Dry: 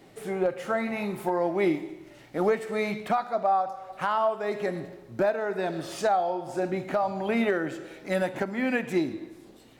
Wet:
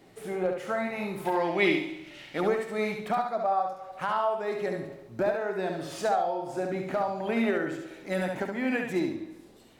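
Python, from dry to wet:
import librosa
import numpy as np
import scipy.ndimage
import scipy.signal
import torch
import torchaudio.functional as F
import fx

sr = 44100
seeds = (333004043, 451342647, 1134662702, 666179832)

y = fx.peak_eq(x, sr, hz=3000.0, db=14.5, octaves=1.7, at=(1.25, 2.41))
y = fx.echo_feedback(y, sr, ms=70, feedback_pct=26, wet_db=-5)
y = y * 10.0 ** (-3.0 / 20.0)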